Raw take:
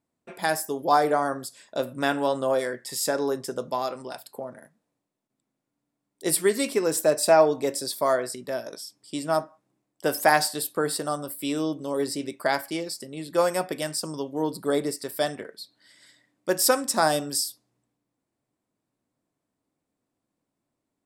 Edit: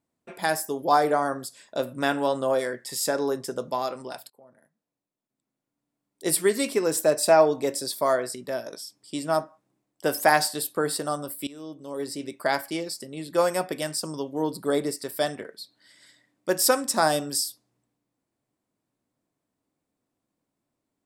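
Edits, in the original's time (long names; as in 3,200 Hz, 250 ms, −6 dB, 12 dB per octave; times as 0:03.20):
0:04.30–0:06.31: fade in, from −23.5 dB
0:11.47–0:12.54: fade in, from −20 dB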